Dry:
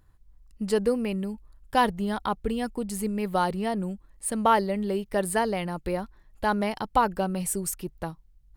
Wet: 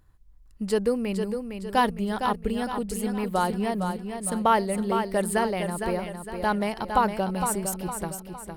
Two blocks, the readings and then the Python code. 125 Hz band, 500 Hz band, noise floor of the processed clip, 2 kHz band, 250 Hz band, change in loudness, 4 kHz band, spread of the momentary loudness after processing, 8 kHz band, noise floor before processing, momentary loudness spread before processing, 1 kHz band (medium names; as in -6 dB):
+1.0 dB, +1.0 dB, -51 dBFS, +1.0 dB, +1.0 dB, +0.5 dB, +1.0 dB, 7 LU, +1.0 dB, -58 dBFS, 11 LU, +1.0 dB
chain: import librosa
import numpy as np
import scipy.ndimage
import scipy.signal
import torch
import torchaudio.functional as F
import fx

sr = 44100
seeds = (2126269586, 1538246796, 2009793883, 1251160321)

y = fx.echo_feedback(x, sr, ms=459, feedback_pct=43, wet_db=-7)